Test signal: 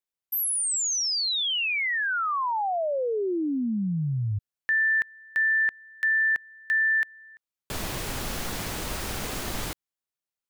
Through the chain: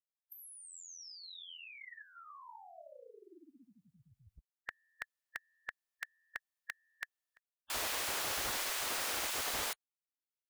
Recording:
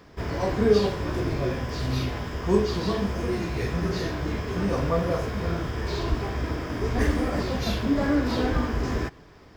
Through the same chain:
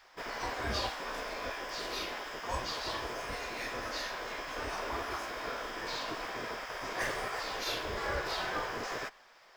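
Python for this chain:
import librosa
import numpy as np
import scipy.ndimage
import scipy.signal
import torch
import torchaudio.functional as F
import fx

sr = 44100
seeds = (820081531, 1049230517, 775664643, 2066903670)

y = fx.spec_gate(x, sr, threshold_db=-10, keep='weak')
y = fx.peak_eq(y, sr, hz=170.0, db=-14.0, octaves=1.7)
y = y * librosa.db_to_amplitude(-1.5)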